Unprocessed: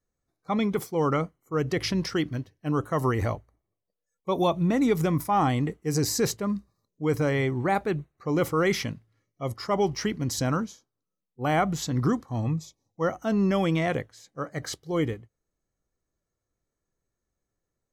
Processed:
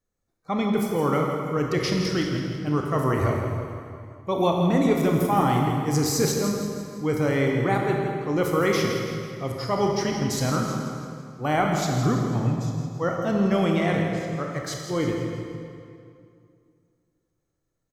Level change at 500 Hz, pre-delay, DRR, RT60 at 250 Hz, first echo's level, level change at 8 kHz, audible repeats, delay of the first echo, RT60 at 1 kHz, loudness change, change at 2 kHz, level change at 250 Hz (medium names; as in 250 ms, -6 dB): +3.0 dB, 22 ms, 0.5 dB, 2.6 s, -9.0 dB, +2.5 dB, 3, 165 ms, 2.3 s, +2.5 dB, +2.5 dB, +3.0 dB